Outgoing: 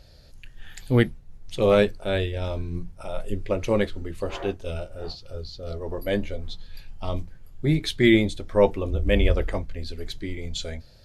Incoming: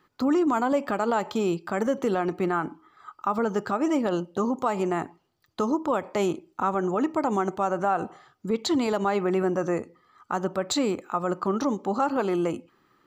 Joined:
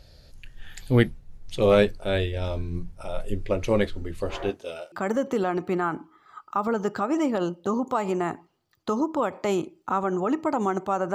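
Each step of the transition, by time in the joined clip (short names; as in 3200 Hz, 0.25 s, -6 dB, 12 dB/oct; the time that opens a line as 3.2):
outgoing
4.49–4.92 HPF 170 Hz -> 720 Hz
4.92 switch to incoming from 1.63 s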